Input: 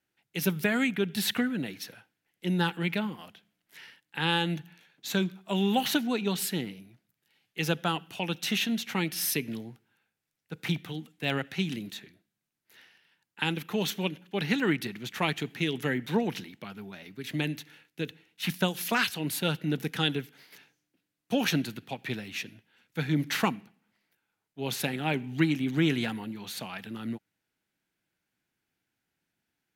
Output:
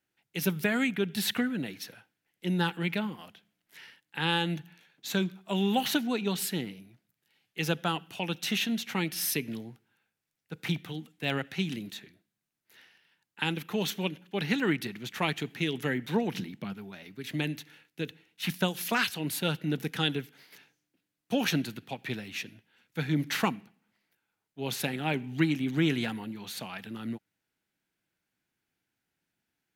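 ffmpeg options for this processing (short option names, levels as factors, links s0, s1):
-filter_complex "[0:a]asettb=1/sr,asplit=3[s0][s1][s2];[s0]atrim=end=16.344[s3];[s1]atrim=start=16.34:end=16.74,asetpts=PTS-STARTPTS,afade=t=in:d=0.004:c=qsin,afade=t=out:st=0.396:d=0.004:c=qsin,equalizer=f=170:t=o:w=1.9:g=9.5[s4];[s2]atrim=start=16.736[s5];[s3][s4]acrossfade=d=0.004:c1=hsin:c2=qsin[s6];[s6][s5]acrossfade=d=0.004:c1=qsin:c2=hsin,volume=0.891"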